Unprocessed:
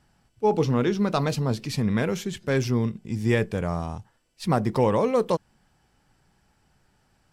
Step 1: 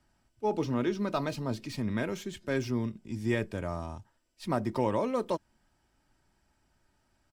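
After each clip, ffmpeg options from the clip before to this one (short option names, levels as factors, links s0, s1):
-filter_complex "[0:a]aecho=1:1:3.2:0.44,acrossover=split=150|3500[s0][s1][s2];[s2]asoftclip=type=tanh:threshold=0.0158[s3];[s0][s1][s3]amix=inputs=3:normalize=0,volume=0.447"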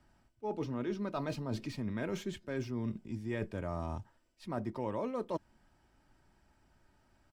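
-af "highshelf=f=3500:g=-7.5,areverse,acompressor=threshold=0.0141:ratio=6,areverse,volume=1.5"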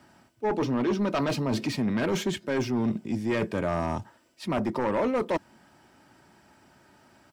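-af "highpass=150,aeval=exprs='0.0631*sin(PI/2*2.24*val(0)/0.0631)':c=same,volume=1.41"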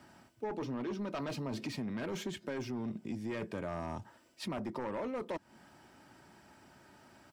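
-af "acompressor=threshold=0.0178:ratio=6,volume=0.841"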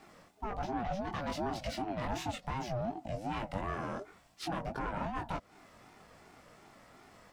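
-af "flanger=delay=19.5:depth=2.1:speed=2.3,aeval=exprs='val(0)*sin(2*PI*450*n/s+450*0.2/2.7*sin(2*PI*2.7*n/s))':c=same,volume=2.37"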